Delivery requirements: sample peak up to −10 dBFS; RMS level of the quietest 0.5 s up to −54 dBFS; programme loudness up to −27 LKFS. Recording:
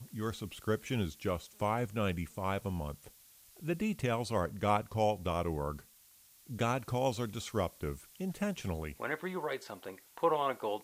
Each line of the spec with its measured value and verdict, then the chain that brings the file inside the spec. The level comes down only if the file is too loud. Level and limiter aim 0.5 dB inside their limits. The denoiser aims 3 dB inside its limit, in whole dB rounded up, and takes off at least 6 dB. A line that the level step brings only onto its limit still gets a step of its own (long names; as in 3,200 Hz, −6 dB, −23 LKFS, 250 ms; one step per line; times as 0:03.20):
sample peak −16.5 dBFS: in spec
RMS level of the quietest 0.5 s −62 dBFS: in spec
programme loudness −35.5 LKFS: in spec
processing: no processing needed